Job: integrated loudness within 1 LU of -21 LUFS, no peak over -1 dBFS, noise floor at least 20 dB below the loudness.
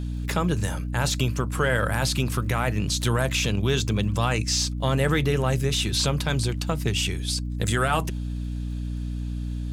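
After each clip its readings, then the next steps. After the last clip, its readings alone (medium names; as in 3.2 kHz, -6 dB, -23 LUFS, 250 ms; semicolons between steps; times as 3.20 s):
tick rate 40 per s; hum 60 Hz; highest harmonic 300 Hz; hum level -27 dBFS; loudness -25.0 LUFS; peak level -9.5 dBFS; loudness target -21.0 LUFS
-> de-click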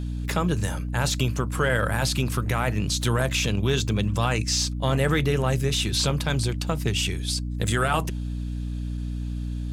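tick rate 0.21 per s; hum 60 Hz; highest harmonic 300 Hz; hum level -27 dBFS
-> de-hum 60 Hz, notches 5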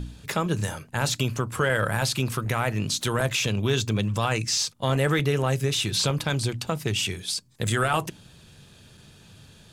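hum not found; loudness -25.5 LUFS; peak level -9.5 dBFS; loudness target -21.0 LUFS
-> trim +4.5 dB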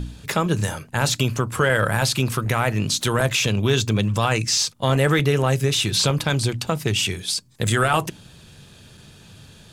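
loudness -21.0 LUFS; peak level -5.0 dBFS; noise floor -48 dBFS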